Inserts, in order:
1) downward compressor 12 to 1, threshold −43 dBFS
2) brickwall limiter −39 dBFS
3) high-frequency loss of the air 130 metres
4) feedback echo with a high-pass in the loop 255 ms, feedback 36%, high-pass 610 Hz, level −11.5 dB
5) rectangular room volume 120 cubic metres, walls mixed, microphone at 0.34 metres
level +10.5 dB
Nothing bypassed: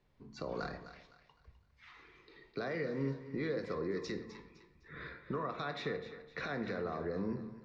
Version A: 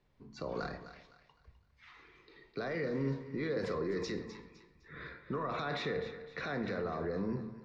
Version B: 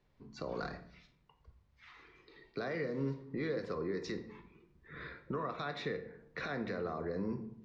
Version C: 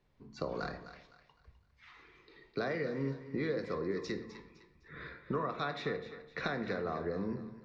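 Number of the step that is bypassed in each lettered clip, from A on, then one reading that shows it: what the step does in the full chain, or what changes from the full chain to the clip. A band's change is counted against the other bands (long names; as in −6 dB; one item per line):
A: 1, average gain reduction 10.5 dB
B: 4, echo-to-direct ratio −6.0 dB to −7.5 dB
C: 2, change in crest factor +4.5 dB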